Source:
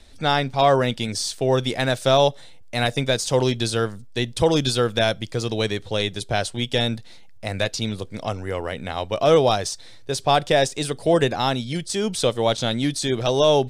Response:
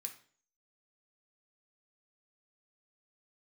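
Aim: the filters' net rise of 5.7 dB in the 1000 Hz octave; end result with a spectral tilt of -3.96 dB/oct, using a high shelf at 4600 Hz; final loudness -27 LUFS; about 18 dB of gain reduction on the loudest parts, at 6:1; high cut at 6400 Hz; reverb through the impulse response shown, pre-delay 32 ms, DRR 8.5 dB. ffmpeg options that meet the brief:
-filter_complex "[0:a]lowpass=6.4k,equalizer=f=1k:t=o:g=8,highshelf=f=4.6k:g=4.5,acompressor=threshold=-29dB:ratio=6,asplit=2[a][b];[1:a]atrim=start_sample=2205,adelay=32[c];[b][c]afir=irnorm=-1:irlink=0,volume=-4dB[d];[a][d]amix=inputs=2:normalize=0,volume=5.5dB"

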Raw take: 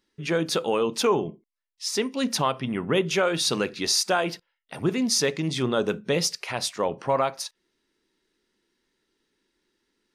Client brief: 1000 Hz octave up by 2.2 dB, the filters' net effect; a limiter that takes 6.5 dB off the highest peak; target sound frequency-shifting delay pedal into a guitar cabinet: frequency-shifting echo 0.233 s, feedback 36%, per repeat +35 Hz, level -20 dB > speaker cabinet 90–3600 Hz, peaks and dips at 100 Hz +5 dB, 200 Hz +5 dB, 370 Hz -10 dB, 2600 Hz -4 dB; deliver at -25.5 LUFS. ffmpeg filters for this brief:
-filter_complex "[0:a]equalizer=f=1k:t=o:g=3,alimiter=limit=-16.5dB:level=0:latency=1,asplit=4[a][b][c][d];[b]adelay=233,afreqshift=35,volume=-20dB[e];[c]adelay=466,afreqshift=70,volume=-28.9dB[f];[d]adelay=699,afreqshift=105,volume=-37.7dB[g];[a][e][f][g]amix=inputs=4:normalize=0,highpass=90,equalizer=f=100:t=q:w=4:g=5,equalizer=f=200:t=q:w=4:g=5,equalizer=f=370:t=q:w=4:g=-10,equalizer=f=2.6k:t=q:w=4:g=-4,lowpass=f=3.6k:w=0.5412,lowpass=f=3.6k:w=1.3066,volume=4dB"

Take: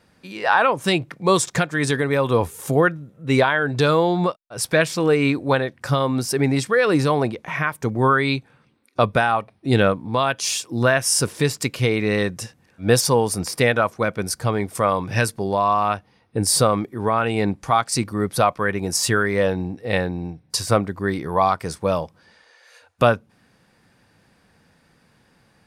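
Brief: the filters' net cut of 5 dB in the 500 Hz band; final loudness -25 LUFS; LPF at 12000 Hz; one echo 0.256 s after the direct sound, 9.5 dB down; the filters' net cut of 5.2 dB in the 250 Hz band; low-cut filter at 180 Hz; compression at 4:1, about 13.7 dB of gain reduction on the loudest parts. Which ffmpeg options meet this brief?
-af "highpass=180,lowpass=12k,equalizer=f=250:t=o:g=-3.5,equalizer=f=500:t=o:g=-5,acompressor=threshold=-31dB:ratio=4,aecho=1:1:256:0.335,volume=8.5dB"

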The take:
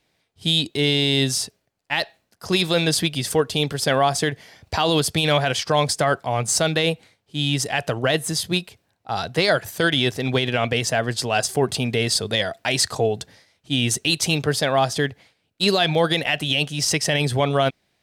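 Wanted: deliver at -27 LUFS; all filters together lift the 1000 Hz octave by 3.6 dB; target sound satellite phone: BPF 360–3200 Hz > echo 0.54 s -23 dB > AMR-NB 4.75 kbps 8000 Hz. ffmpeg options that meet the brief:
-af "highpass=360,lowpass=3.2k,equalizer=f=1k:t=o:g=5.5,aecho=1:1:540:0.0708,volume=-2.5dB" -ar 8000 -c:a libopencore_amrnb -b:a 4750

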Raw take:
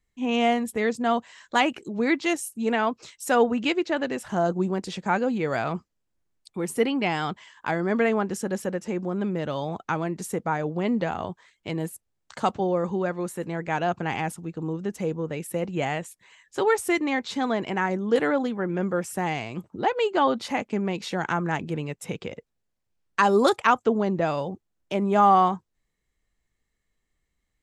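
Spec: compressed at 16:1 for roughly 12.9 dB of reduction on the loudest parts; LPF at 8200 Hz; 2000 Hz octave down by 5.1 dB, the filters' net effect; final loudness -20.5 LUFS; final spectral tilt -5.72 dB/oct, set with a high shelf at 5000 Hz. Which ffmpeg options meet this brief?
-af "lowpass=8.2k,equalizer=f=2k:t=o:g=-5.5,highshelf=f=5k:g=-7.5,acompressor=threshold=-27dB:ratio=16,volume=12.5dB"

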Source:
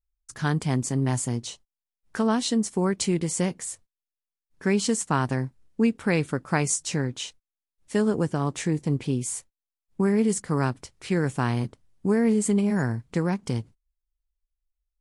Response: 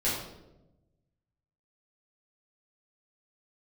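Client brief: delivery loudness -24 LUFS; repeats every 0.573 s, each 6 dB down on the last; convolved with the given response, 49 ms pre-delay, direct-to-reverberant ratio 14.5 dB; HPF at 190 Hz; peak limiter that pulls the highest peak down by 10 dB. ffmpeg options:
-filter_complex "[0:a]highpass=190,alimiter=limit=-17.5dB:level=0:latency=1,aecho=1:1:573|1146|1719|2292|2865|3438:0.501|0.251|0.125|0.0626|0.0313|0.0157,asplit=2[a][b];[1:a]atrim=start_sample=2205,adelay=49[c];[b][c]afir=irnorm=-1:irlink=0,volume=-23.5dB[d];[a][d]amix=inputs=2:normalize=0,volume=4.5dB"

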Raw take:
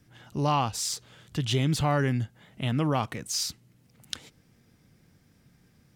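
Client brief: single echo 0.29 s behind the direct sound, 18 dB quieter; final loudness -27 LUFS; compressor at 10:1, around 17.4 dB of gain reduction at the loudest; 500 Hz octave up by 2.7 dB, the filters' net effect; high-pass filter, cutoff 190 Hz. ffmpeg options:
-af "highpass=190,equalizer=f=500:t=o:g=3.5,acompressor=threshold=-38dB:ratio=10,aecho=1:1:290:0.126,volume=15.5dB"

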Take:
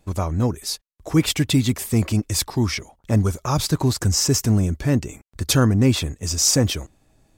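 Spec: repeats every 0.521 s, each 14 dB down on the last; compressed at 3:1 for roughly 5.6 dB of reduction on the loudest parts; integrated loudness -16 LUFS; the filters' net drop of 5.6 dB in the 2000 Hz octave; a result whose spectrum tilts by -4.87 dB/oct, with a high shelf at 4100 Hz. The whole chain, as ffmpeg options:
-af "equalizer=f=2k:t=o:g=-6.5,highshelf=f=4.1k:g=-3.5,acompressor=threshold=-20dB:ratio=3,aecho=1:1:521|1042:0.2|0.0399,volume=9dB"

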